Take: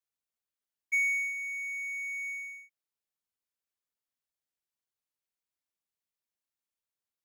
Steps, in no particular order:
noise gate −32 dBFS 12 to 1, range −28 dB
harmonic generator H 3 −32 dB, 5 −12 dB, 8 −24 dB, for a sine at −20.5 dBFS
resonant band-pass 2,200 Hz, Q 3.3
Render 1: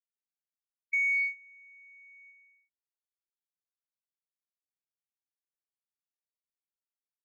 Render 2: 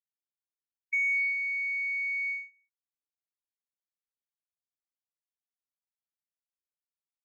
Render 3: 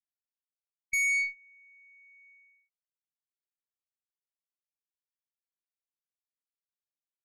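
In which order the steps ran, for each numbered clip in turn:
noise gate, then harmonic generator, then resonant band-pass
harmonic generator, then resonant band-pass, then noise gate
resonant band-pass, then noise gate, then harmonic generator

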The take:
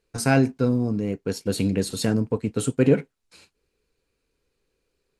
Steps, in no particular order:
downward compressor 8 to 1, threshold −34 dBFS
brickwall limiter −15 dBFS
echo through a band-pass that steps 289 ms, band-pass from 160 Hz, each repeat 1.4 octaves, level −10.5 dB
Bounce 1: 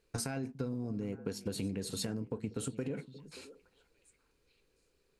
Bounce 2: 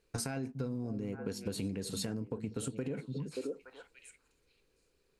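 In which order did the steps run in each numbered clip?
brickwall limiter, then downward compressor, then echo through a band-pass that steps
echo through a band-pass that steps, then brickwall limiter, then downward compressor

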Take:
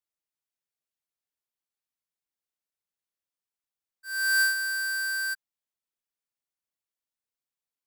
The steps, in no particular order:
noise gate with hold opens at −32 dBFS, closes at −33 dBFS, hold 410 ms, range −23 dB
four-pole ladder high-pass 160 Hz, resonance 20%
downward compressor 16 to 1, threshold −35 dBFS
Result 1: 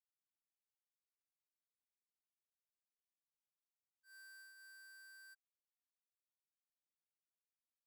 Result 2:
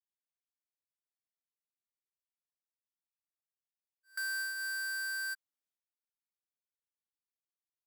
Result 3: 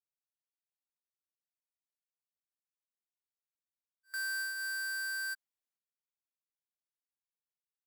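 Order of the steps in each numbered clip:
four-pole ladder high-pass, then downward compressor, then noise gate with hold
four-pole ladder high-pass, then noise gate with hold, then downward compressor
noise gate with hold, then four-pole ladder high-pass, then downward compressor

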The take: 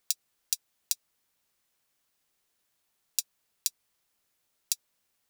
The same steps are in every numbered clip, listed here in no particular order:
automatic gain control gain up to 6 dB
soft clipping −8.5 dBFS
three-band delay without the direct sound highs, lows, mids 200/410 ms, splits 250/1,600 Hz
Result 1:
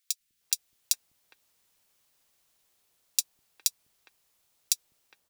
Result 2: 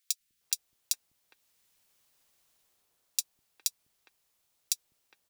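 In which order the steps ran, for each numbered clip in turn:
soft clipping, then automatic gain control, then three-band delay without the direct sound
automatic gain control, then soft clipping, then three-band delay without the direct sound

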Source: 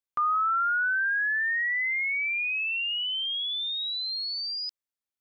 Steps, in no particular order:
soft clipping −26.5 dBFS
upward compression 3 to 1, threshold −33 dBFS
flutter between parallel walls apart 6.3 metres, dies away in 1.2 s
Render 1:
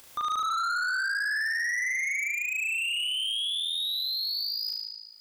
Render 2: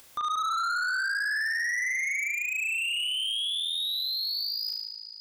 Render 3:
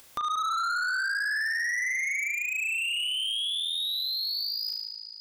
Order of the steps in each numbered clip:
upward compression, then flutter between parallel walls, then soft clipping
flutter between parallel walls, then upward compression, then soft clipping
flutter between parallel walls, then soft clipping, then upward compression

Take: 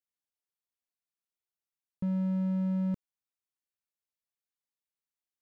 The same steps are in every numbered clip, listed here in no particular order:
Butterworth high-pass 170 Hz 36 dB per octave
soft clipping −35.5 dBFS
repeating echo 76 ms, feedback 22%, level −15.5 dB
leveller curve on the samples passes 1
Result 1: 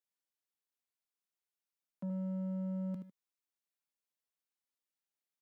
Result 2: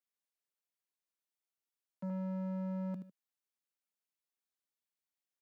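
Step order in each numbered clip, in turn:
repeating echo, then soft clipping, then Butterworth high-pass, then leveller curve on the samples
repeating echo, then leveller curve on the samples, then soft clipping, then Butterworth high-pass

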